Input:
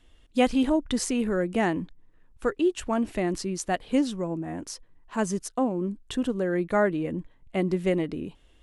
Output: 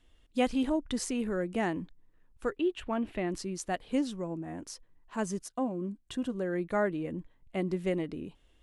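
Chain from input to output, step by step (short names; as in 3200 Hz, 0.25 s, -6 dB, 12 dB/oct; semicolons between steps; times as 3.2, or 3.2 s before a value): 2.57–3.31 resonant high shelf 4400 Hz -9.5 dB, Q 1.5; 5.44–6.34 notch comb 440 Hz; gain -6 dB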